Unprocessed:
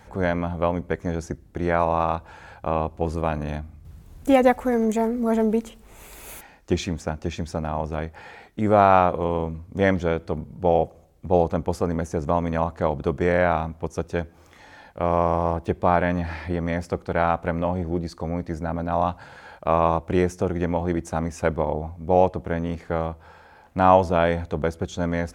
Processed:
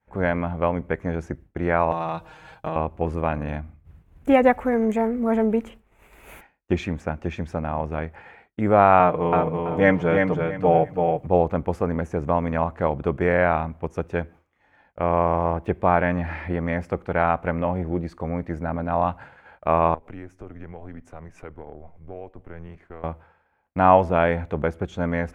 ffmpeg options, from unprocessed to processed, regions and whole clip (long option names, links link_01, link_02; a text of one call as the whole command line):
ffmpeg -i in.wav -filter_complex "[0:a]asettb=1/sr,asplit=3[link_01][link_02][link_03];[link_01]atrim=end=1.914[link_04];[link_02]atrim=start=1.91:end=2.76,asetpts=PTS-STARTPTS,afade=type=in:duration=0.004:curve=qsin,afade=type=out:start_time=0.846:duration=0.004:curve=qsin,highshelf=frequency=2900:width_type=q:width=1.5:gain=9,aecho=1:1:6.4:0.88,atrim=end_sample=37485,acompressor=threshold=-22dB:ratio=10:attack=3.2:release=140:knee=1:detection=peak[link_05];[link_03]atrim=start=2.756[link_06];[link_04][link_05]acrossfade=duration=0.004:curve1=hsin:curve2=qsin[link_07];[link_07][link_06]acrossfade=duration=0.004:curve1=qsin:curve2=hsin,asettb=1/sr,asplit=3[link_08][link_09][link_10];[link_08]atrim=end=8.994[link_11];[link_09]atrim=start=8.99:end=11.27,asetpts=PTS-STARTPTS,afade=type=in:duration=0.004:curve=qsin,afade=type=out:start_time=2.276:duration=0.004:curve=qsin,aecho=1:1:6.6:0.66,atrim=end_sample=100548,aecho=1:1:331|662|993:0.631|0.151|0.0363,atrim=end_sample=100548[link_12];[link_10]atrim=start=11.266[link_13];[link_11][link_12]acrossfade=duration=0.004:curve1=hsin:curve2=qsin[link_14];[link_14][link_13]acrossfade=duration=0.004:curve1=qsin:curve2=hsin,asettb=1/sr,asplit=3[link_15][link_16][link_17];[link_15]atrim=end=19.944[link_18];[link_16]atrim=start=19.94:end=23.04,asetpts=PTS-STARTPTS,afade=type=in:duration=0.004:curve=qsin,afade=type=out:start_time=3.096:duration=0.004:curve=qsin,acompressor=threshold=-37dB:ratio=4:attack=3.2:release=140:knee=1:detection=peak,afreqshift=-83[link_19];[link_17]atrim=start=23.036[link_20];[link_18][link_19]acrossfade=duration=0.004:curve1=hsin:curve2=qsin[link_21];[link_21][link_20]acrossfade=duration=0.004:curve1=qsin:curve2=hsin,agate=range=-33dB:threshold=-37dB:ratio=3:detection=peak,highshelf=frequency=3300:width_type=q:width=1.5:gain=-10" out.wav